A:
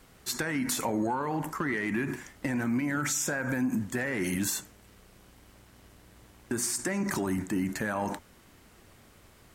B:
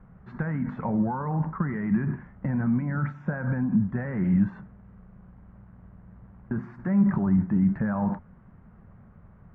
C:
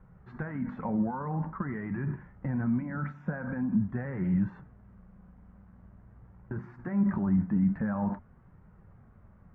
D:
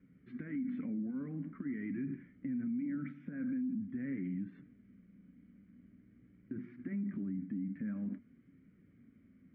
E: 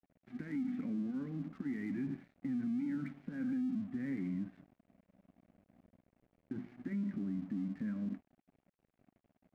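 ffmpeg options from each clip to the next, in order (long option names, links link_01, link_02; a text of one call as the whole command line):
ffmpeg -i in.wav -af "lowpass=frequency=1500:width=0.5412,lowpass=frequency=1500:width=1.3066,lowshelf=frequency=240:width_type=q:width=3:gain=7" out.wav
ffmpeg -i in.wav -af "flanger=delay=2.1:depth=2:regen=-61:speed=0.46:shape=sinusoidal" out.wav
ffmpeg -i in.wav -filter_complex "[0:a]acompressor=threshold=-31dB:ratio=6,asplit=3[link_01][link_02][link_03];[link_01]bandpass=frequency=270:width_type=q:width=8,volume=0dB[link_04];[link_02]bandpass=frequency=2290:width_type=q:width=8,volume=-6dB[link_05];[link_03]bandpass=frequency=3010:width_type=q:width=8,volume=-9dB[link_06];[link_04][link_05][link_06]amix=inputs=3:normalize=0,alimiter=level_in=18dB:limit=-24dB:level=0:latency=1:release=61,volume=-18dB,volume=10.5dB" out.wav
ffmpeg -i in.wav -af "aeval=exprs='sgn(val(0))*max(abs(val(0))-0.00106,0)':channel_layout=same,volume=1dB" out.wav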